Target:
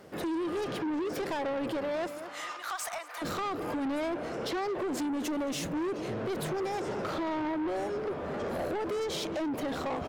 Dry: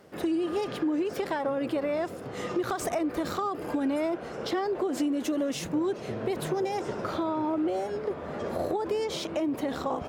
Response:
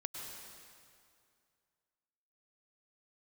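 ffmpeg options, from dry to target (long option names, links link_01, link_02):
-filter_complex "[0:a]asettb=1/sr,asplit=3[link_01][link_02][link_03];[link_01]atrim=end=2.074[link_04];[link_02]atrim=start=2.07:end=3.22,asetpts=PTS-STARTPTS,afade=type=in:duration=0.004:curve=qsin,afade=type=out:start_time=1.146:duration=0.004:curve=qsin,highpass=frequency=890:width=0.5412,highpass=frequency=890:width=1.3066[link_05];[link_03]atrim=start=3.216[link_06];[link_04][link_05]acrossfade=duration=0.004:curve1=hsin:curve2=qsin[link_07];[link_07][link_06]acrossfade=duration=0.004:curve1=qsin:curve2=hsin,asplit=2[link_08][link_09];[link_09]adelay=221,lowpass=frequency=3000:poles=1,volume=-15dB,asplit=2[link_10][link_11];[link_11]adelay=221,lowpass=frequency=3000:poles=1,volume=0.38,asplit=2[link_12][link_13];[link_13]adelay=221,lowpass=frequency=3000:poles=1,volume=0.38[link_14];[link_08][link_10][link_12][link_14]amix=inputs=4:normalize=0,asoftclip=type=tanh:threshold=-32dB,volume=2.5dB"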